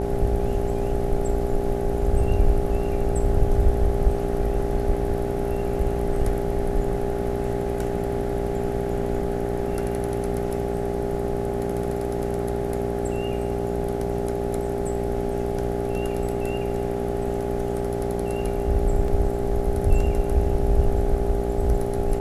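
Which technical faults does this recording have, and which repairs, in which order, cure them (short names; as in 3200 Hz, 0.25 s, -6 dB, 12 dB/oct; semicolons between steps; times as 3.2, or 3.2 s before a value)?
buzz 60 Hz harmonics 14 -28 dBFS
tone 400 Hz -27 dBFS
19.08 gap 2 ms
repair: de-hum 60 Hz, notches 14; notch 400 Hz, Q 30; interpolate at 19.08, 2 ms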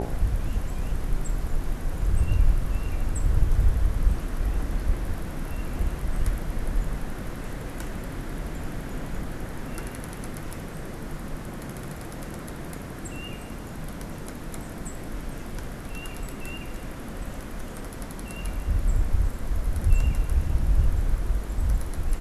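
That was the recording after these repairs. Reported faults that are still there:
none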